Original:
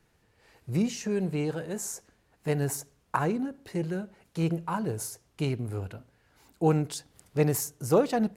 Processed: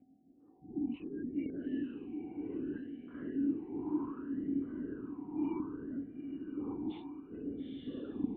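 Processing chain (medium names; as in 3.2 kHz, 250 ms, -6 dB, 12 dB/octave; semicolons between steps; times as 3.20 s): every event in the spectrogram widened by 120 ms; level-controlled noise filter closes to 680 Hz, open at -17.5 dBFS; spectral gate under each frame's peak -20 dB strong; peaking EQ 1.2 kHz -6 dB 1.1 oct; reverse; compression 6:1, threshold -37 dBFS, peak gain reduction 20.5 dB; reverse; whistle 750 Hz -54 dBFS; LPC vocoder at 8 kHz whisper; on a send: echo that smears into a reverb 919 ms, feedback 53%, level -5 dB; on the sum: talking filter i-u 0.65 Hz; trim +10 dB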